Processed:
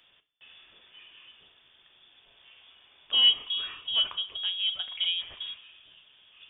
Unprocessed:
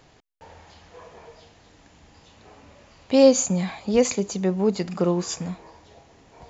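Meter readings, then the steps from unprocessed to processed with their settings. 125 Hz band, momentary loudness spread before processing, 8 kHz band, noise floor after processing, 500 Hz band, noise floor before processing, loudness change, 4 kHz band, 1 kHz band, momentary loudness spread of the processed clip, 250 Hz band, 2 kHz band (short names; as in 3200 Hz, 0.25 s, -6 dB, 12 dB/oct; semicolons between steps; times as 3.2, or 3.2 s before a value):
under -30 dB, 14 LU, n/a, -63 dBFS, under -30 dB, -55 dBFS, -4.0 dB, +13.5 dB, -14.5 dB, 17 LU, under -35 dB, -2.5 dB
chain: soft clip -6 dBFS, distortion -21 dB; inverted band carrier 3500 Hz; two-slope reverb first 0.36 s, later 4 s, from -22 dB, DRR 9.5 dB; gain -7.5 dB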